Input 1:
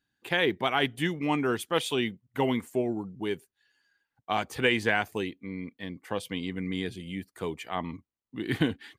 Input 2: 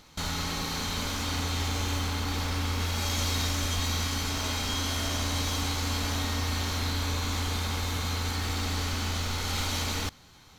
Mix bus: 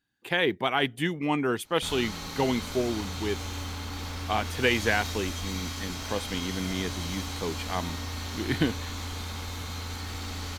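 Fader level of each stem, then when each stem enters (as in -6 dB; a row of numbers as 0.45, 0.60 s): +0.5, -5.5 dB; 0.00, 1.65 s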